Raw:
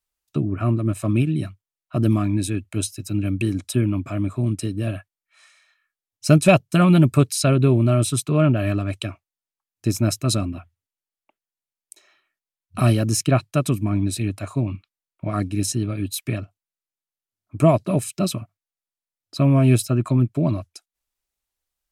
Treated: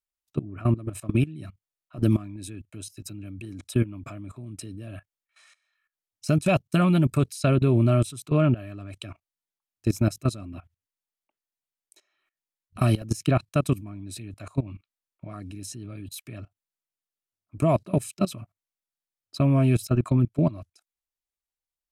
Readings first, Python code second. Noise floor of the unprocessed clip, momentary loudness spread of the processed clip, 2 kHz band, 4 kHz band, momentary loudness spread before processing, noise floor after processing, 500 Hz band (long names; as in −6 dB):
below −85 dBFS, 19 LU, −6.5 dB, −9.0 dB, 13 LU, below −85 dBFS, −5.0 dB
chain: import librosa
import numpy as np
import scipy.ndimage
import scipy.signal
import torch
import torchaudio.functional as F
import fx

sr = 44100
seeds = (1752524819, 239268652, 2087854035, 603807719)

y = fx.level_steps(x, sr, step_db=19)